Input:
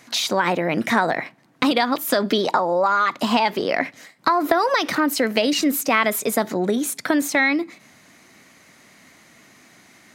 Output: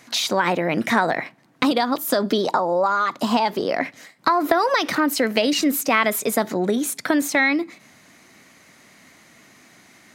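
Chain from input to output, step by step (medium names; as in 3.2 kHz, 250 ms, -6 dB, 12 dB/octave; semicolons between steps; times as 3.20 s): 1.65–3.81 s: peaking EQ 2.3 kHz -6.5 dB 1.1 oct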